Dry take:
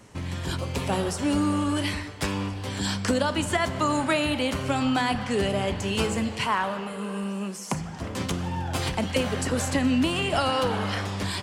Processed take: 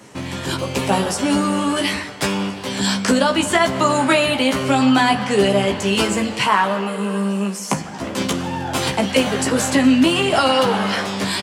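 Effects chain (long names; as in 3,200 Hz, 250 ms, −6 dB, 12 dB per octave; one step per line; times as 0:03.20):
high-pass filter 160 Hz 12 dB per octave
double-tracking delay 15 ms −4 dB
level +7.5 dB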